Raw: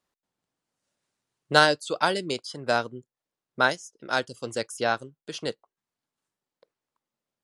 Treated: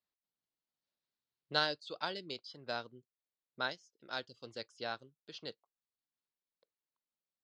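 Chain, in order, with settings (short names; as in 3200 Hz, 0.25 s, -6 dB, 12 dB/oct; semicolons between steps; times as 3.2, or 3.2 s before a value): ladder low-pass 5000 Hz, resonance 50%; gain -6.5 dB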